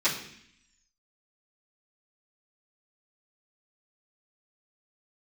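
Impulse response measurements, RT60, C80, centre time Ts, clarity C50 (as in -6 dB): 0.65 s, 10.5 dB, 27 ms, 7.5 dB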